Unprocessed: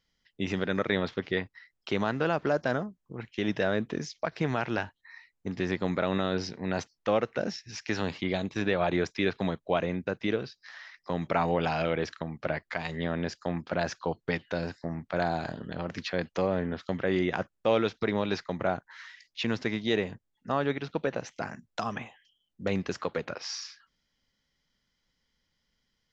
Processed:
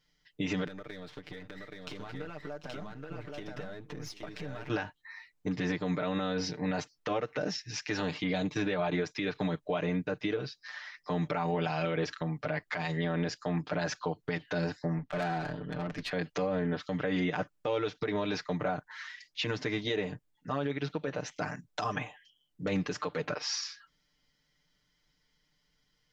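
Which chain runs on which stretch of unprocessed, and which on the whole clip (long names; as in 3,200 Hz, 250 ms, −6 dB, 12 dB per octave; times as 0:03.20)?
0:00.67–0:04.70: gain on one half-wave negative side −7 dB + downward compressor 20 to 1, threshold −40 dBFS + multi-tap delay 744/825 ms −17.5/−3 dB
0:14.98–0:16.11: high-frequency loss of the air 110 metres + tube saturation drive 31 dB, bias 0.4
whole clip: comb filter 6.7 ms, depth 95%; downward compressor, threshold −25 dBFS; brickwall limiter −21.5 dBFS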